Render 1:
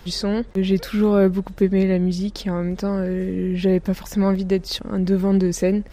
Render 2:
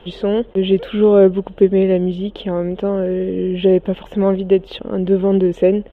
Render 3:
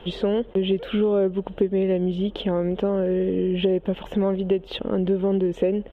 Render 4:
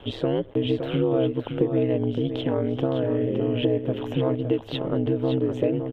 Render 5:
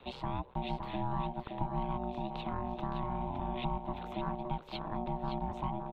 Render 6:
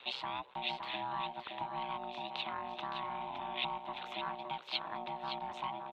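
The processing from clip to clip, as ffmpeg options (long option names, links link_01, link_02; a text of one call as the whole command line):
ffmpeg -i in.wav -af "firequalizer=gain_entry='entry(100,0);entry(430,13);entry(1100,4);entry(2100,0);entry(3100,14);entry(4700,-23);entry(7400,-18)':delay=0.05:min_phase=1,volume=-3.5dB" out.wav
ffmpeg -i in.wav -af "acompressor=threshold=-19dB:ratio=5" out.wav
ffmpeg -i in.wav -af "aeval=exprs='val(0)*sin(2*PI*64*n/s)':channel_layout=same,aecho=1:1:565:0.422,volume=1dB" out.wav
ffmpeg -i in.wav -filter_complex "[0:a]aeval=exprs='val(0)*sin(2*PI*480*n/s)':channel_layout=same,acrossover=split=410|940[link_01][link_02][link_03];[link_02]alimiter=level_in=6.5dB:limit=-24dB:level=0:latency=1,volume=-6.5dB[link_04];[link_01][link_04][link_03]amix=inputs=3:normalize=0,volume=-8dB" out.wav
ffmpeg -i in.wav -af "bandpass=frequency=3400:width_type=q:width=0.86:csg=0,volume=9.5dB" out.wav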